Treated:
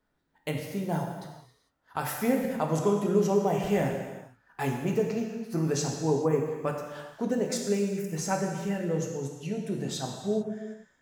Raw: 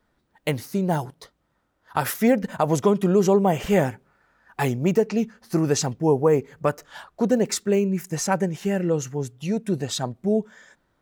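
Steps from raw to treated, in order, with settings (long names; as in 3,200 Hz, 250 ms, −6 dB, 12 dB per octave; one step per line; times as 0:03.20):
reverb whose tail is shaped and stops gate 470 ms falling, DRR 0.5 dB
level −9 dB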